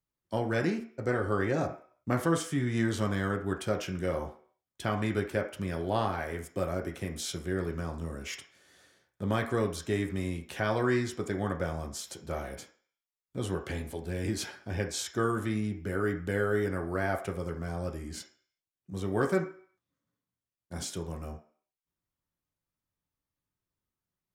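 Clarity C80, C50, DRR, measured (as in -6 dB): 14.5 dB, 10.0 dB, 1.0 dB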